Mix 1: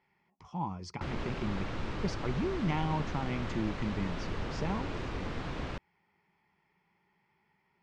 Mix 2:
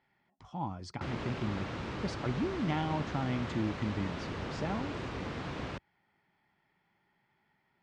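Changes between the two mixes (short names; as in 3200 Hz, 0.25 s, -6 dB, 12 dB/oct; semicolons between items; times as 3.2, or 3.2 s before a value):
speech: remove ripple EQ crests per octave 0.8, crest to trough 7 dB; background: add HPF 75 Hz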